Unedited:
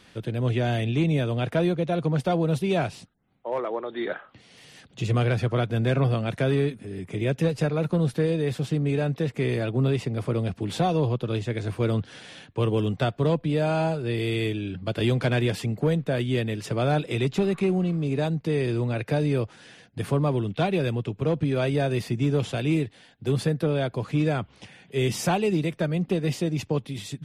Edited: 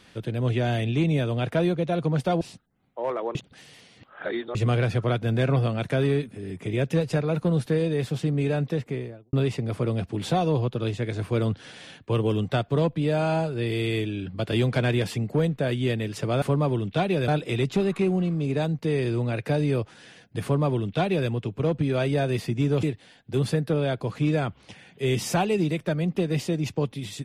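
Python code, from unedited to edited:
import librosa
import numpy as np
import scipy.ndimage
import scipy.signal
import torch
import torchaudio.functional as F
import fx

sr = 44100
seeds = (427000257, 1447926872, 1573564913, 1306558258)

y = fx.studio_fade_out(x, sr, start_s=9.13, length_s=0.68)
y = fx.edit(y, sr, fx.cut(start_s=2.41, length_s=0.48),
    fx.reverse_span(start_s=3.83, length_s=1.2),
    fx.duplicate(start_s=20.05, length_s=0.86, to_s=16.9),
    fx.cut(start_s=22.45, length_s=0.31), tone=tone)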